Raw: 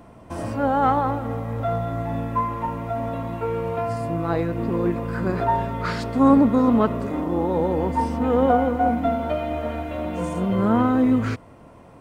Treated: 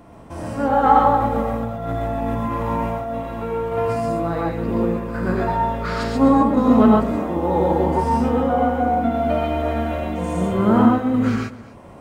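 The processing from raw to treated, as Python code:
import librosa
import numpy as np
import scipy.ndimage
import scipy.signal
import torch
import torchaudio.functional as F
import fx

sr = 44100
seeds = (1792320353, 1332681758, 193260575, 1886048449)

y = fx.over_compress(x, sr, threshold_db=-28.0, ratio=-0.5, at=(1.2, 3.03), fade=0.02)
y = fx.tremolo_random(y, sr, seeds[0], hz=3.5, depth_pct=55)
y = y + 10.0 ** (-18.5 / 20.0) * np.pad(y, (int(256 * sr / 1000.0), 0))[:len(y)]
y = fx.rev_gated(y, sr, seeds[1], gate_ms=160, shape='rising', drr_db=-1.5)
y = F.gain(torch.from_numpy(y), 1.5).numpy()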